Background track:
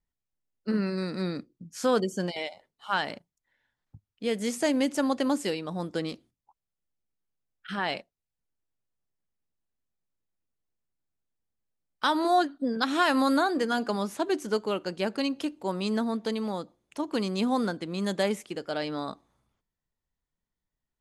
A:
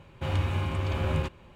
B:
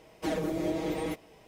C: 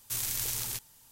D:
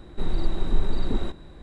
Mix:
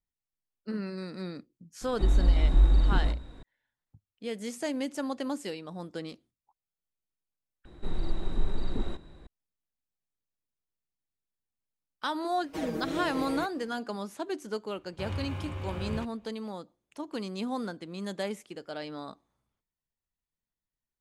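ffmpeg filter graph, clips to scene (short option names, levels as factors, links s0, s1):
-filter_complex "[4:a]asplit=2[s0][s1];[0:a]volume=0.447[s2];[s0]afreqshift=-61[s3];[1:a]agate=range=0.0224:threshold=0.00398:ratio=3:release=100:detection=peak[s4];[s2]asplit=2[s5][s6];[s5]atrim=end=7.654[s7];[s1]atrim=end=1.62,asetpts=PTS-STARTPTS,volume=0.501[s8];[s6]atrim=start=9.266[s9];[s3]atrim=end=1.62,asetpts=PTS-STARTPTS,volume=0.794,afade=t=in:d=0.004:c=hsin,afade=t=out:st=1.616:d=0.004:c=hsin,adelay=1810[s10];[2:a]atrim=end=1.47,asetpts=PTS-STARTPTS,volume=0.631,afade=t=in:d=0.004:c=hsin,afade=t=out:st=1.466:d=0.004:c=hsin,adelay=12310[s11];[s4]atrim=end=1.55,asetpts=PTS-STARTPTS,volume=0.398,afade=t=in:d=0.004:c=hsin,afade=t=out:st=1.546:d=0.004:c=hsin,adelay=14770[s12];[s7][s8]acrossfade=d=0.004:c1=hsin:c2=hsin[s13];[s13][s9]acrossfade=d=0.004:c1=hsin:c2=hsin[s14];[s14][s10][s11][s12]amix=inputs=4:normalize=0"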